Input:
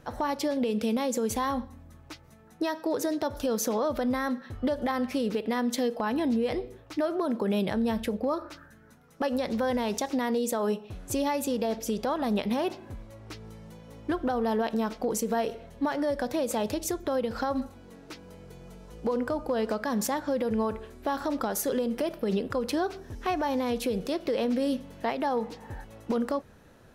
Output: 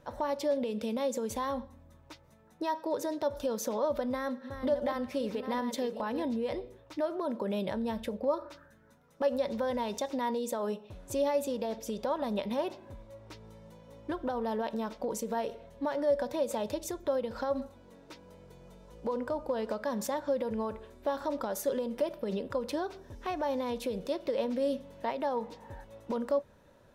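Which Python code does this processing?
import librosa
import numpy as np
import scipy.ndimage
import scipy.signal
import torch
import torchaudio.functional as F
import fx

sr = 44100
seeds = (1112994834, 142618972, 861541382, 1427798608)

y = fx.reverse_delay(x, sr, ms=405, wet_db=-9.0, at=(3.99, 6.23))
y = fx.peak_eq(y, sr, hz=11000.0, db=-2.5, octaves=0.35)
y = fx.small_body(y, sr, hz=(570.0, 950.0, 3600.0), ring_ms=55, db=11)
y = y * 10.0 ** (-7.0 / 20.0)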